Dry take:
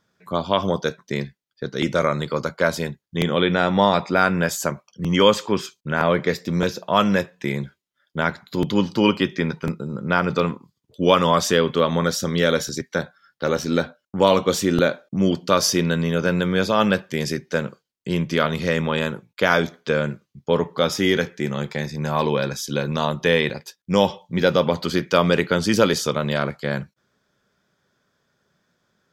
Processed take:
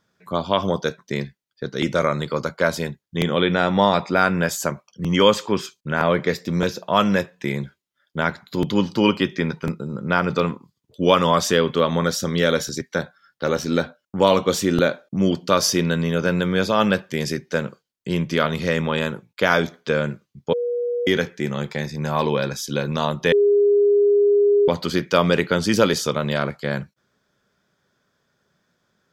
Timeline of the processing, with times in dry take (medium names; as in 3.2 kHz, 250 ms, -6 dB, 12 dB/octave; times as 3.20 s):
20.53–21.07 s: bleep 482 Hz -20.5 dBFS
23.32–24.68 s: bleep 408 Hz -12.5 dBFS